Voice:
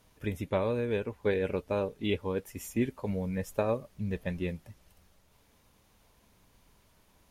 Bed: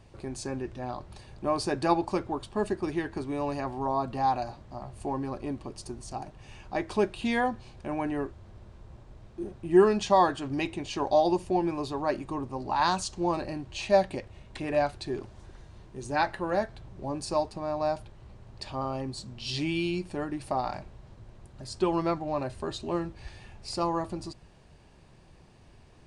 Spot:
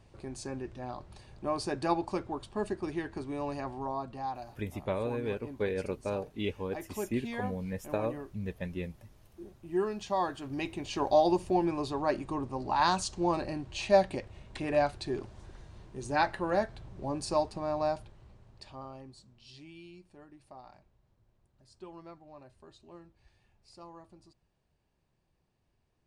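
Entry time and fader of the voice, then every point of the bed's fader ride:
4.35 s, -3.5 dB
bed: 3.71 s -4.5 dB
4.31 s -11 dB
9.96 s -11 dB
11.02 s -1 dB
17.78 s -1 dB
19.64 s -21 dB

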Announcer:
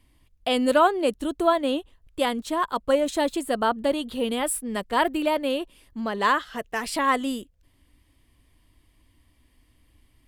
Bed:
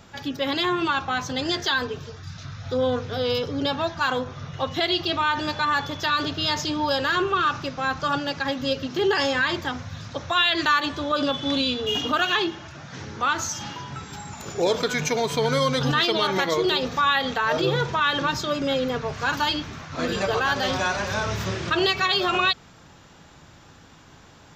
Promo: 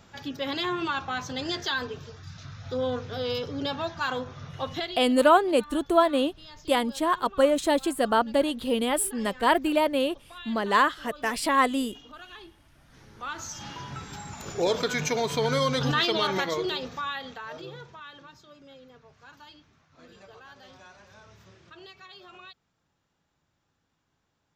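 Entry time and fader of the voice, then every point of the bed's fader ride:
4.50 s, +0.5 dB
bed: 4.78 s -5.5 dB
5.06 s -23.5 dB
12.65 s -23.5 dB
13.83 s -3 dB
16.28 s -3 dB
18.37 s -26.5 dB

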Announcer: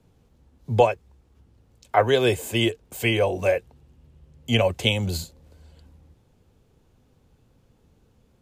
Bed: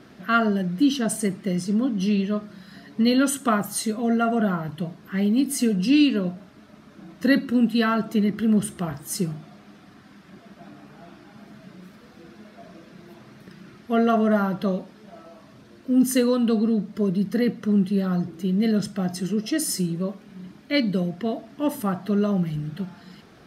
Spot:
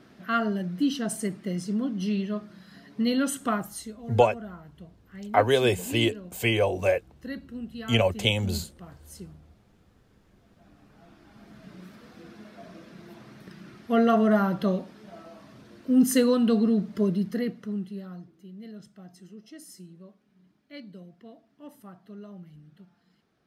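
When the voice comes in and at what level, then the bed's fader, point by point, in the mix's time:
3.40 s, -2.0 dB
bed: 3.55 s -5.5 dB
4.03 s -17.5 dB
10.35 s -17.5 dB
11.81 s -1 dB
17.03 s -1 dB
18.42 s -21.5 dB

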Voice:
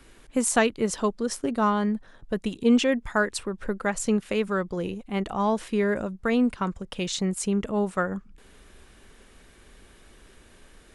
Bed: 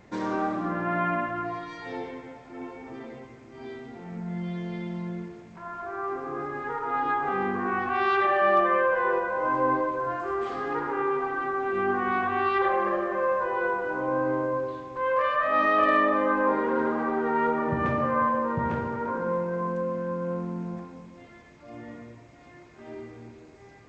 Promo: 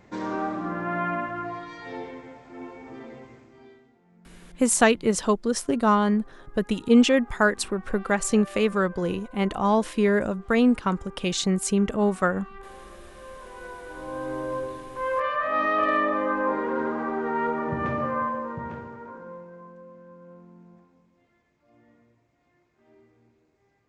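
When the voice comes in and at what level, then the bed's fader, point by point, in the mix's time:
4.25 s, +3.0 dB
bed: 3.36 s -1 dB
4.00 s -21 dB
13.11 s -21 dB
14.60 s -1.5 dB
18.05 s -1.5 dB
19.74 s -17.5 dB

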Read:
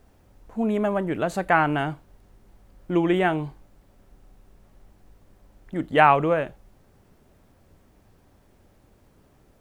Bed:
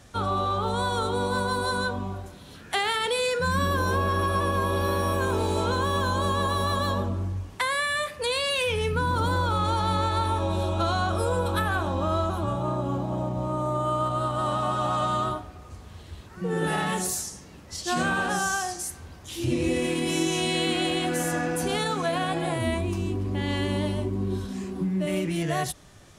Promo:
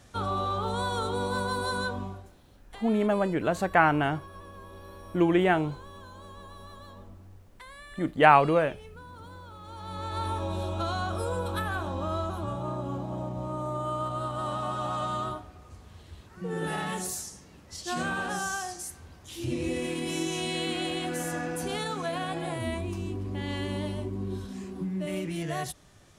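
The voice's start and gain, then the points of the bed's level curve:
2.25 s, -1.5 dB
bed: 2.03 s -3.5 dB
2.60 s -21.5 dB
9.60 s -21.5 dB
10.24 s -5.5 dB

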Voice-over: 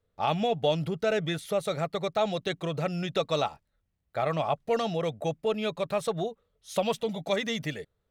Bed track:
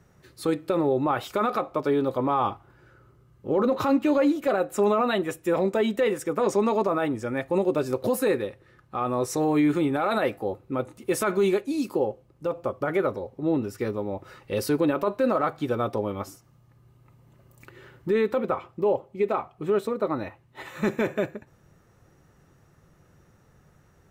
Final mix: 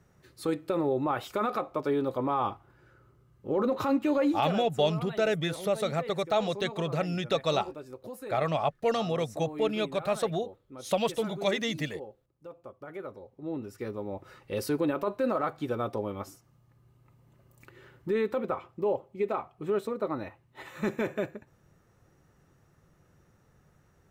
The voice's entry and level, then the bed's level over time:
4.15 s, 0.0 dB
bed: 4.33 s -4.5 dB
4.82 s -17.5 dB
12.80 s -17.5 dB
14.16 s -5 dB

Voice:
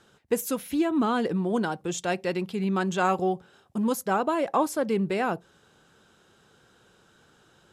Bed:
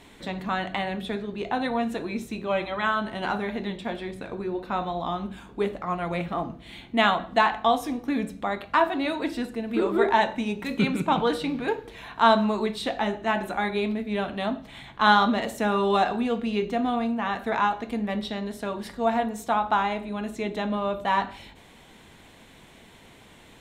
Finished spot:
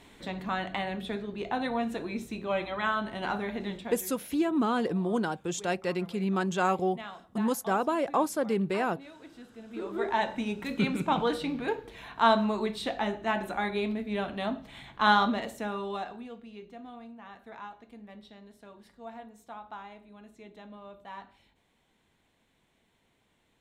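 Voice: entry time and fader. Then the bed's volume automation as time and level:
3.60 s, -2.5 dB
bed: 3.77 s -4 dB
4.30 s -21.5 dB
9.26 s -21.5 dB
10.36 s -4 dB
15.22 s -4 dB
16.48 s -20 dB

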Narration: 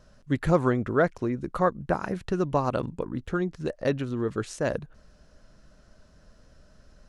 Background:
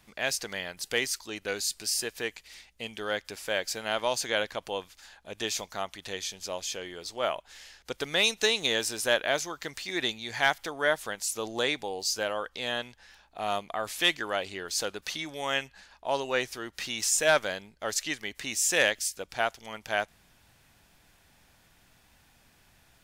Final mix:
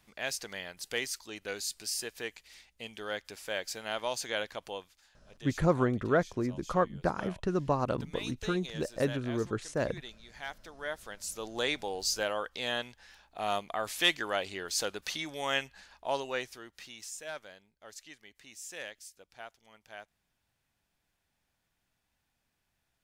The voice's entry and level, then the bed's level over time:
5.15 s, -4.0 dB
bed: 4.70 s -5.5 dB
5.19 s -17 dB
10.42 s -17 dB
11.81 s -1.5 dB
16.01 s -1.5 dB
17.22 s -18.5 dB

